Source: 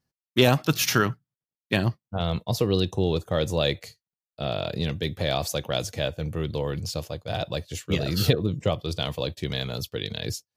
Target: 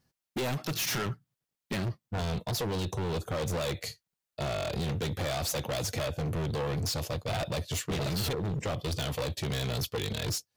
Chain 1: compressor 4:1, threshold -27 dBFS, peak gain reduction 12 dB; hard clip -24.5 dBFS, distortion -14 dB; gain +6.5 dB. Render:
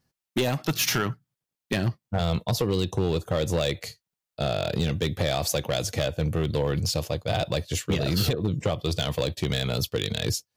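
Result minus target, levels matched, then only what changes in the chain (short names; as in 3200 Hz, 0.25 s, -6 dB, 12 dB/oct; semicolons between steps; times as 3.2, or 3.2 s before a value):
hard clip: distortion -9 dB
change: hard clip -35.5 dBFS, distortion -4 dB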